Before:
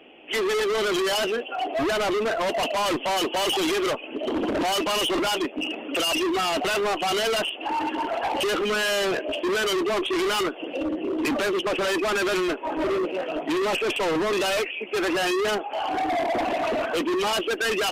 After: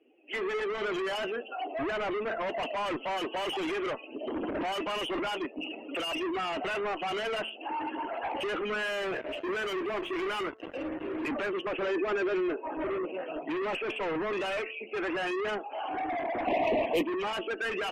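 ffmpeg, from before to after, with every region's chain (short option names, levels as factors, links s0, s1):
-filter_complex "[0:a]asettb=1/sr,asplit=3[s0][s1][s2];[s0]atrim=end=8.864[s3];[s1]atrim=start=8.86:end=11.29,asetpts=PTS-STARTPTS,afade=t=in:d=0.004:c=qsin,afade=t=out:st=2.426:d=0.004:c=qsin,bandreject=f=50:t=h:w=6,bandreject=f=100:t=h:w=6,bandreject=f=150:t=h:w=6,bandreject=f=200:t=h:w=6,bandreject=f=250:t=h:w=6,bandreject=f=300:t=h:w=6,bandreject=f=350:t=h:w=6,acrusher=bits=4:mix=0:aa=0.5[s4];[s2]atrim=start=11.286[s5];[s3][s4]acrossfade=d=0.004:c1=hsin:c2=qsin[s6];[s6][s5]acrossfade=d=0.004:c1=qsin:c2=hsin,asettb=1/sr,asplit=3[s7][s8][s9];[s7]atrim=end=11.824[s10];[s8]atrim=start=11.82:end=12.61,asetpts=PTS-STARTPTS,afade=t=in:d=0.004:c=qsin,afade=t=out:st=0.786:d=0.004:c=qsin,lowpass=f=7900:w=0.5412,lowpass=f=7900:w=1.3066,equalizer=f=400:w=1.9:g=9,acompressor=threshold=0.112:ratio=4:attack=3.2:release=140:knee=1:detection=peak[s11];[s9]atrim=start=12.606[s12];[s10][s11]acrossfade=d=0.004:c1=hsin:c2=qsin[s13];[s13][s12]acrossfade=d=0.004:c1=qsin:c2=hsin,asettb=1/sr,asplit=3[s14][s15][s16];[s14]atrim=end=16.474[s17];[s15]atrim=start=16.47:end=17.03,asetpts=PTS-STARTPTS,afade=t=in:d=0.004:c=qsin,afade=t=out:st=0.556:d=0.004:c=qsin,equalizer=f=13000:w=1.3:g=9,acontrast=74,asuperstop=centerf=1400:order=4:qfactor=1.3[s18];[s16]atrim=start=17.026[s19];[s17][s18]acrossfade=d=0.004:c1=hsin:c2=qsin[s20];[s20][s19]acrossfade=d=0.004:c1=qsin:c2=hsin,bandreject=f=220.3:t=h:w=4,bandreject=f=440.6:t=h:w=4,bandreject=f=660.9:t=h:w=4,bandreject=f=881.2:t=h:w=4,bandreject=f=1101.5:t=h:w=4,bandreject=f=1321.8:t=h:w=4,bandreject=f=1542.1:t=h:w=4,bandreject=f=1762.4:t=h:w=4,bandreject=f=1982.7:t=h:w=4,afftdn=nr=18:nf=-41,highshelf=f=3100:t=q:w=1.5:g=-8,volume=0.398"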